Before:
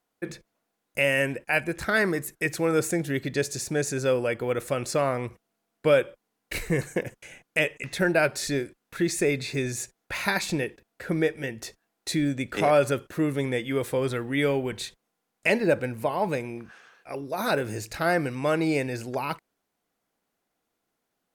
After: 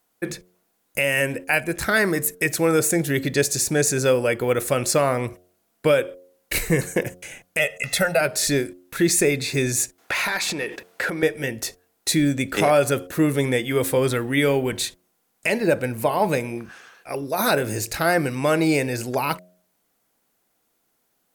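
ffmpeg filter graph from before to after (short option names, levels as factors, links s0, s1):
-filter_complex "[0:a]asettb=1/sr,asplit=3[s0][s1][s2];[s0]atrim=end=7.594[s3];[s1]atrim=start=7.59:end=8.21,asetpts=PTS-STARTPTS,afade=t=in:d=0.004:c=qsin,afade=t=out:st=0.616:d=0.004:c=qsin,lowshelf=f=220:g=-7,aecho=1:1:1.5:0.91,atrim=end_sample=27342[s4];[s2]atrim=start=8.206[s5];[s3][s4]acrossfade=d=0.004:c1=hsin:c2=qsin[s6];[s6][s5]acrossfade=d=0.004:c1=qsin:c2=hsin,asettb=1/sr,asplit=3[s7][s8][s9];[s7]atrim=end=9.984[s10];[s8]atrim=start=9.98:end=11.23,asetpts=PTS-STARTPTS,afade=t=in:d=0.004:c=qsin,afade=t=out:st=1.246:d=0.004:c=qsin,acompressor=threshold=0.0112:ratio=20:attack=3.2:release=140:knee=1:detection=peak,asplit=2[s11][s12];[s12]highpass=f=720:p=1,volume=14.1,asoftclip=type=tanh:threshold=0.168[s13];[s11][s13]amix=inputs=2:normalize=0,lowpass=f=2900:p=1,volume=0.501[s14];[s9]atrim=start=11.226[s15];[s10][s14]acrossfade=d=0.004:c1=hsin:c2=qsin[s16];[s16][s15]acrossfade=d=0.004:c1=qsin:c2=hsin,highshelf=f=7600:g=10.5,bandreject=f=90.01:t=h:w=4,bandreject=f=180.02:t=h:w=4,bandreject=f=270.03:t=h:w=4,bandreject=f=360.04:t=h:w=4,bandreject=f=450.05:t=h:w=4,bandreject=f=540.06:t=h:w=4,bandreject=f=630.07:t=h:w=4,bandreject=f=720.08:t=h:w=4,alimiter=limit=0.188:level=0:latency=1:release=298,volume=2"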